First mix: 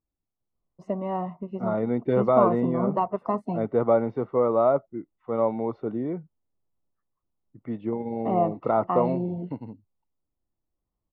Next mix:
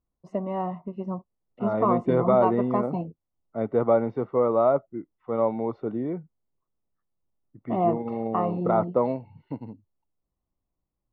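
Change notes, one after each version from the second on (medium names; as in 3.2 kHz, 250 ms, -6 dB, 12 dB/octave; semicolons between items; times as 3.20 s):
first voice: entry -0.55 s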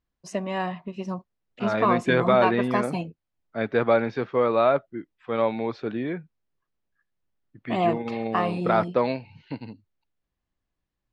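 master: remove Savitzky-Golay filter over 65 samples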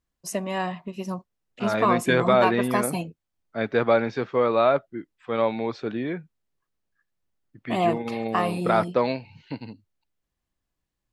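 master: remove distance through air 110 m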